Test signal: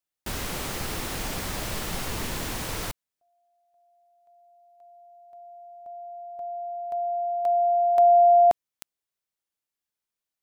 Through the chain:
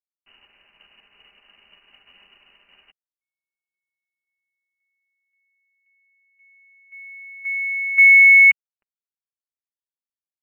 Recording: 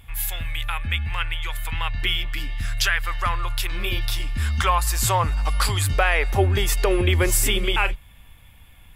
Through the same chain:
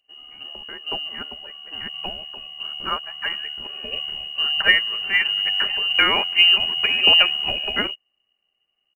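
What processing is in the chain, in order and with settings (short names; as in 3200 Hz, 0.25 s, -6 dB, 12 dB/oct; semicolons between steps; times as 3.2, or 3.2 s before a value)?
inverted band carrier 2900 Hz; companded quantiser 8-bit; bell 150 Hz -10.5 dB 0.23 oct; comb 5 ms, depth 37%; upward expander 2.5:1, over -34 dBFS; gain +3.5 dB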